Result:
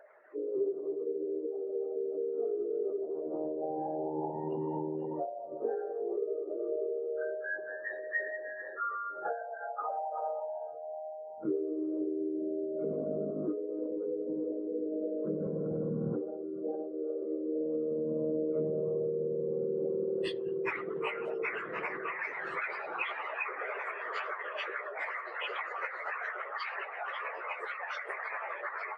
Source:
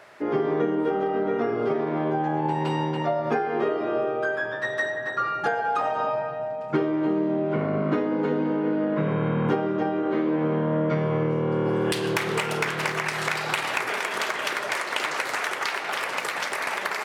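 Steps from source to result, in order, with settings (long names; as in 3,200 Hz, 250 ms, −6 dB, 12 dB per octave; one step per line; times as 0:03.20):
spectral envelope exaggerated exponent 3
time stretch by phase vocoder 1.7×
level −7 dB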